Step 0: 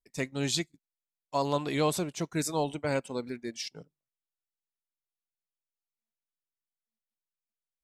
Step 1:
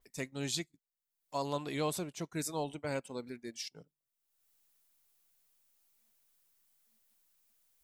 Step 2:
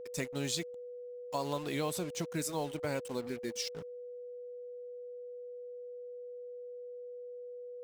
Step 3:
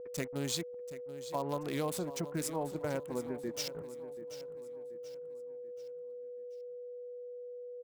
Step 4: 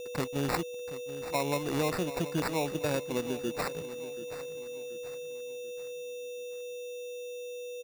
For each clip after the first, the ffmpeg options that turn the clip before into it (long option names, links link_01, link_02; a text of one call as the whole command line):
ffmpeg -i in.wav -af "highshelf=frequency=7900:gain=10.5,acompressor=mode=upward:threshold=-47dB:ratio=2.5,adynamicequalizer=threshold=0.00398:dfrequency=4600:dqfactor=0.7:tfrequency=4600:tqfactor=0.7:attack=5:release=100:ratio=0.375:range=2.5:mode=cutabove:tftype=highshelf,volume=-7dB" out.wav
ffmpeg -i in.wav -af "acompressor=threshold=-41dB:ratio=2.5,acrusher=bits=8:mix=0:aa=0.5,aeval=exprs='val(0)+0.00355*sin(2*PI*490*n/s)':channel_layout=same,volume=6.5dB" out.wav
ffmpeg -i in.wav -filter_complex "[0:a]acrossover=split=1800[link_01][link_02];[link_02]aeval=exprs='val(0)*gte(abs(val(0)),0.0112)':channel_layout=same[link_03];[link_01][link_03]amix=inputs=2:normalize=0,aecho=1:1:733|1466|2199|2932:0.2|0.0858|0.0369|0.0159" out.wav
ffmpeg -i in.wav -af "acrusher=samples=14:mix=1:aa=0.000001,volume=5dB" out.wav